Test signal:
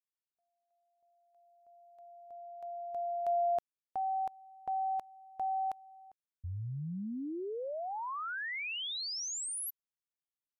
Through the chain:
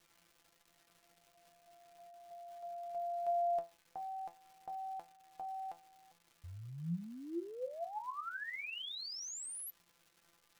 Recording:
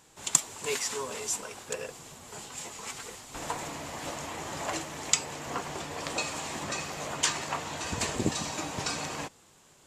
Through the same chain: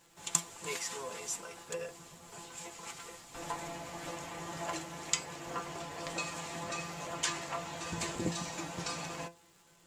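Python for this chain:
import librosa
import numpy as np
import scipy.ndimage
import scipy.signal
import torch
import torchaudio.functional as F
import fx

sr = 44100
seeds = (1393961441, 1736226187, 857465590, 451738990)

y = fx.dmg_crackle(x, sr, seeds[0], per_s=430.0, level_db=-48.0)
y = fx.comb_fb(y, sr, f0_hz=170.0, decay_s=0.24, harmonics='all', damping=0.6, mix_pct=90)
y = y * 10.0 ** (5.5 / 20.0)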